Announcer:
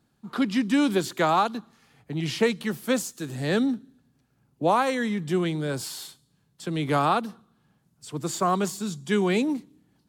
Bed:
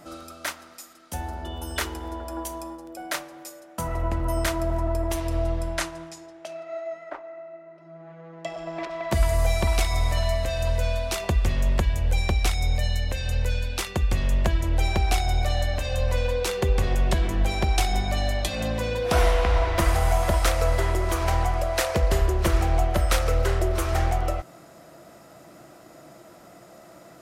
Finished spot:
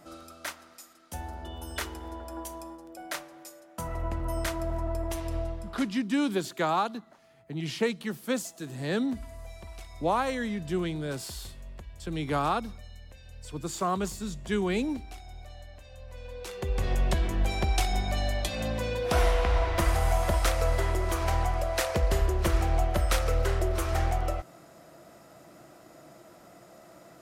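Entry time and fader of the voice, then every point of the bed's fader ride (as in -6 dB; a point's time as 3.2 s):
5.40 s, -5.0 dB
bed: 5.36 s -6 dB
6.14 s -22 dB
16.07 s -22 dB
16.9 s -4 dB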